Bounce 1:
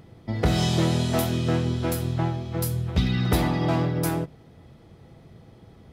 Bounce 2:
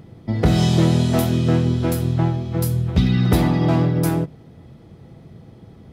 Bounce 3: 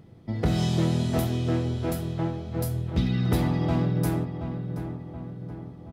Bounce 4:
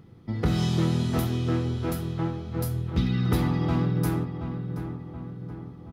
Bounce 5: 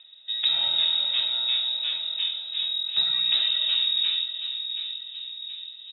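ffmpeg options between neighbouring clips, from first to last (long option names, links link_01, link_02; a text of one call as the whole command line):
ffmpeg -i in.wav -af "equalizer=frequency=180:width=0.49:gain=6,volume=1.5dB" out.wav
ffmpeg -i in.wav -filter_complex "[0:a]asplit=2[link_01][link_02];[link_02]adelay=726,lowpass=frequency=2100:poles=1,volume=-8.5dB,asplit=2[link_03][link_04];[link_04]adelay=726,lowpass=frequency=2100:poles=1,volume=0.55,asplit=2[link_05][link_06];[link_06]adelay=726,lowpass=frequency=2100:poles=1,volume=0.55,asplit=2[link_07][link_08];[link_08]adelay=726,lowpass=frequency=2100:poles=1,volume=0.55,asplit=2[link_09][link_10];[link_10]adelay=726,lowpass=frequency=2100:poles=1,volume=0.55,asplit=2[link_11][link_12];[link_12]adelay=726,lowpass=frequency=2100:poles=1,volume=0.55,asplit=2[link_13][link_14];[link_14]adelay=726,lowpass=frequency=2100:poles=1,volume=0.55[link_15];[link_01][link_03][link_05][link_07][link_09][link_11][link_13][link_15]amix=inputs=8:normalize=0,volume=-8dB" out.wav
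ffmpeg -i in.wav -af "equalizer=frequency=630:width_type=o:width=0.33:gain=-8,equalizer=frequency=1250:width_type=o:width=0.33:gain=5,equalizer=frequency=8000:width_type=o:width=0.33:gain=-4" out.wav
ffmpeg -i in.wav -af "lowpass=frequency=3300:width_type=q:width=0.5098,lowpass=frequency=3300:width_type=q:width=0.6013,lowpass=frequency=3300:width_type=q:width=0.9,lowpass=frequency=3300:width_type=q:width=2.563,afreqshift=-3900" out.wav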